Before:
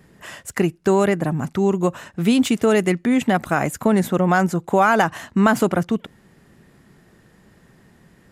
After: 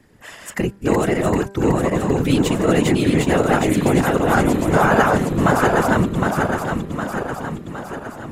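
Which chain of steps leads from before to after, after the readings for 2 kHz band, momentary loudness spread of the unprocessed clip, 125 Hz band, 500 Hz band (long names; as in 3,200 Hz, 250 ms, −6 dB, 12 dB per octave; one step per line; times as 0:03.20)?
+2.5 dB, 7 LU, +4.5 dB, +2.0 dB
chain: feedback delay that plays each chunk backwards 381 ms, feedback 74%, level −1.5 dB
random phases in short frames
hum removal 197.9 Hz, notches 8
level −1.5 dB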